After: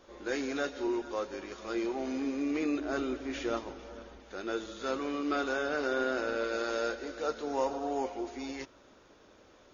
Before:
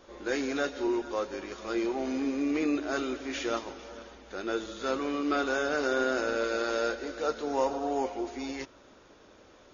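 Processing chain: 2.80–4.20 s: tilt EQ -1.5 dB/octave; 5.53–6.53 s: low-pass 5.4 kHz 12 dB/octave; trim -3 dB

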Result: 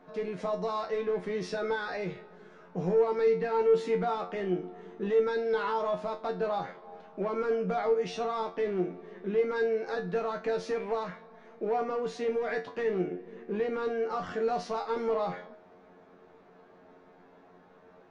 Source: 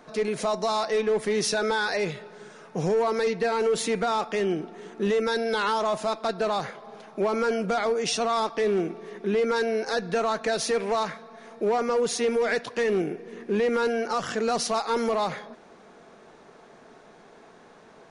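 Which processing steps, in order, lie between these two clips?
tape spacing loss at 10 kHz 26 dB; feedback comb 90 Hz, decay 0.26 s, harmonics all, mix 90%; trim +4 dB

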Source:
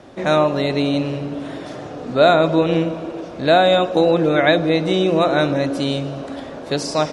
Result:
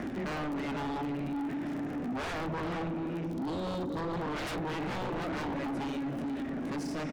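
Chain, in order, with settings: graphic EQ 125/250/500/1000/2000/4000/8000 Hz -5/+9/-10/-7/+6/-10/-3 dB; delay 415 ms -22.5 dB; crackle 37 per s -24 dBFS; de-hum 69.41 Hz, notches 5; spectral selection erased 3.19–4.16 s, 560–3000 Hz; delay 439 ms -11 dB; sine folder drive 17 dB, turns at -3 dBFS; compression 6:1, threshold -29 dBFS, peak gain reduction 21.5 dB; saturation -28.5 dBFS, distortion -16 dB; treble shelf 2.5 kHz -8.5 dB; trim -2.5 dB

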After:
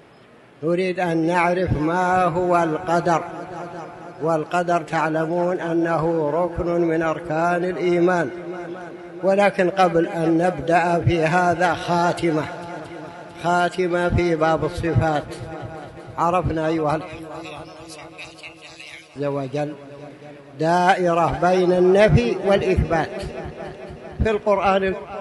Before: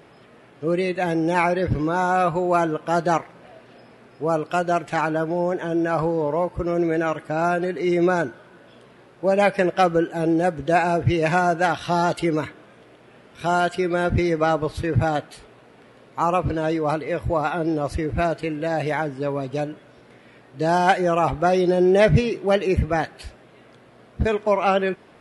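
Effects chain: 17.01–19.16 s: steep high-pass 2.3 kHz 48 dB/octave; multi-head delay 224 ms, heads second and third, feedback 58%, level -17 dB; trim +1.5 dB

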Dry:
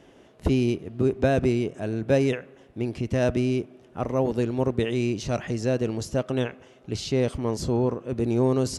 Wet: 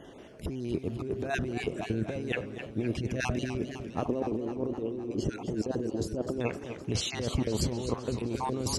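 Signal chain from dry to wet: random holes in the spectrogram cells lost 29%; 4.02–6.40 s: FFT filter 150 Hz 0 dB, 330 Hz +11 dB, 2.3 kHz -13 dB, 3.7 kHz -9 dB; peak limiter -19 dBFS, peak gain reduction 13 dB; compressor with a negative ratio -30 dBFS, ratio -0.5; modulated delay 255 ms, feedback 65%, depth 140 cents, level -10 dB

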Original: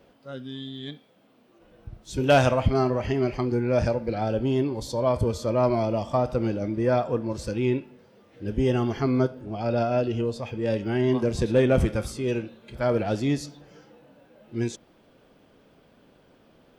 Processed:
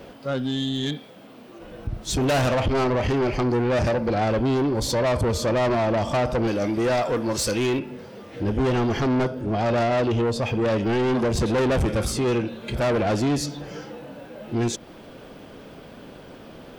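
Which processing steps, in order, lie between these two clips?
6.47–7.79 s: tilt EQ +2.5 dB/octave; in parallel at +2.5 dB: compression, threshold -36 dBFS, peak gain reduction 20 dB; on the sum: saturation -26.5 dBFS, distortion -6 dB; trim +7.5 dB

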